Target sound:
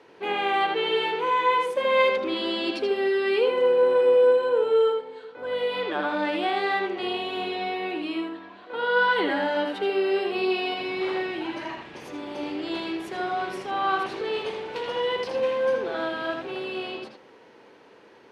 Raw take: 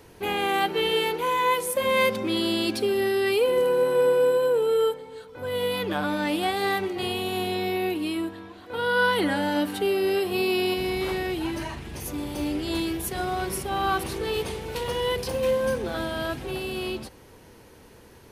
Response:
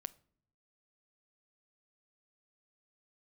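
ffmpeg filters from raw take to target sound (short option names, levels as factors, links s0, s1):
-filter_complex "[0:a]highpass=320,lowpass=3400,asplit=2[s0][s1];[1:a]atrim=start_sample=2205,lowpass=6200,adelay=80[s2];[s1][s2]afir=irnorm=-1:irlink=0,volume=0.944[s3];[s0][s3]amix=inputs=2:normalize=0"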